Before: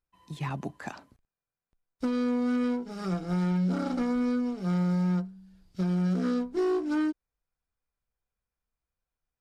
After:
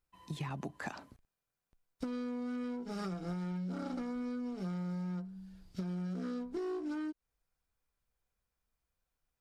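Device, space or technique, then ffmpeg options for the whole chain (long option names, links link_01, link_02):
serial compression, leveller first: -af "acompressor=threshold=-30dB:ratio=3,acompressor=threshold=-39dB:ratio=6,volume=2.5dB"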